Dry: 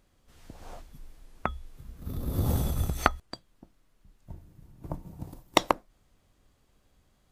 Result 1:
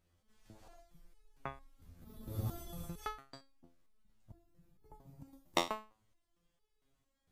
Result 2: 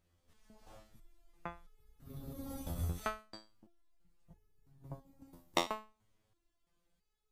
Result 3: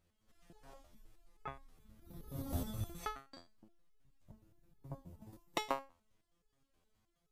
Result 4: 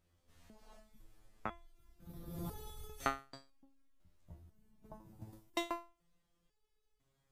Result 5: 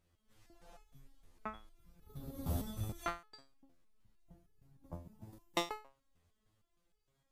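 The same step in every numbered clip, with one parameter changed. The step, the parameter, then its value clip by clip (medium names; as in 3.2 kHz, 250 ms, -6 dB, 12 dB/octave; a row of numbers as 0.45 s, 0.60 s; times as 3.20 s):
resonator arpeggio, rate: 4.4 Hz, 3 Hz, 9.5 Hz, 2 Hz, 6.5 Hz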